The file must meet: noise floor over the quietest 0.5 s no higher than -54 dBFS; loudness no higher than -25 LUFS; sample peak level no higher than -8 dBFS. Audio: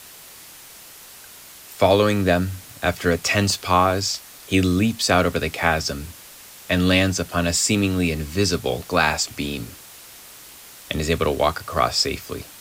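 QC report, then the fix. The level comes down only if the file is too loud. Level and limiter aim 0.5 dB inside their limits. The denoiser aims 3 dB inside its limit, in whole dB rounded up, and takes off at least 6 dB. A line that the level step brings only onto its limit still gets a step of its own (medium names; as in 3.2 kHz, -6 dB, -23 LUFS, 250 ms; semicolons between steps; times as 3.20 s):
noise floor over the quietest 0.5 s -43 dBFS: fail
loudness -21.0 LUFS: fail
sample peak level -3.0 dBFS: fail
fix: noise reduction 10 dB, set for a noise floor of -43 dBFS; trim -4.5 dB; peak limiter -8.5 dBFS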